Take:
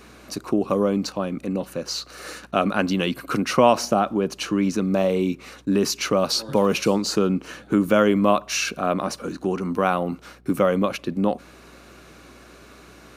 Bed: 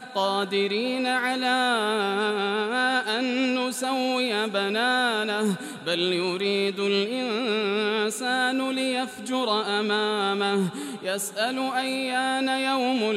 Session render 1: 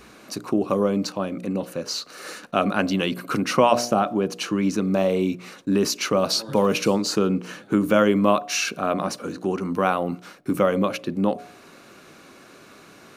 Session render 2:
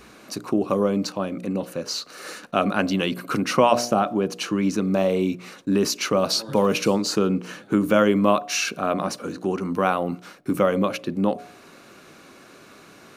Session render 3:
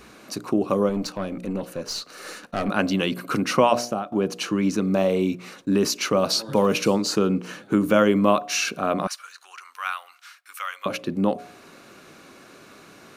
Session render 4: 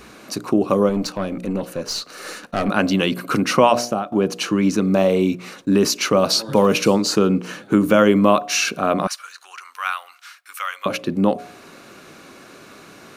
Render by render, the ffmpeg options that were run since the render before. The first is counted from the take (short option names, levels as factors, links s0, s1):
-af "bandreject=f=60:t=h:w=4,bandreject=f=120:t=h:w=4,bandreject=f=180:t=h:w=4,bandreject=f=240:t=h:w=4,bandreject=f=300:t=h:w=4,bandreject=f=360:t=h:w=4,bandreject=f=420:t=h:w=4,bandreject=f=480:t=h:w=4,bandreject=f=540:t=h:w=4,bandreject=f=600:t=h:w=4,bandreject=f=660:t=h:w=4,bandreject=f=720:t=h:w=4"
-af anull
-filter_complex "[0:a]asettb=1/sr,asplit=3[s0][s1][s2];[s0]atrim=end=0.894[s3];[s1]atrim=start=0.89:end=2.69,asetpts=PTS-STARTPTS,afade=t=in:d=0.004:c=qsin,afade=t=out:st=1.796:d=0.004:c=qsin,aeval=exprs='(tanh(10*val(0)+0.35)-tanh(0.35))/10':c=same[s4];[s2]atrim=start=2.686[s5];[s3][s4]acrossfade=d=0.004:c1=hsin:c2=qsin[s6];[s6][s5]acrossfade=d=0.004:c1=qsin:c2=hsin,asettb=1/sr,asplit=3[s7][s8][s9];[s7]atrim=end=9.074[s10];[s8]atrim=start=9.07:end=10.86,asetpts=PTS-STARTPTS,afade=t=in:d=0.004:c=qsin,afade=t=out:st=1.786:d=0.004:c=qsin,highpass=f=1300:w=0.5412,highpass=f=1300:w=1.3066[s11];[s9]atrim=start=10.856[s12];[s10][s11]acrossfade=d=0.004:c1=hsin:c2=qsin[s13];[s13][s12]acrossfade=d=0.004:c1=qsin:c2=hsin,asplit=2[s14][s15];[s14]atrim=end=4.12,asetpts=PTS-STARTPTS,afade=t=out:st=3.46:d=0.66:c=qsin:silence=0.149624[s16];[s15]atrim=start=4.12,asetpts=PTS-STARTPTS,afade=t=in:d=0.004:c=hsin:silence=0.149624[s17];[s16][s17]concat=n=2:v=0:a=1"
-af "volume=1.68,alimiter=limit=0.794:level=0:latency=1"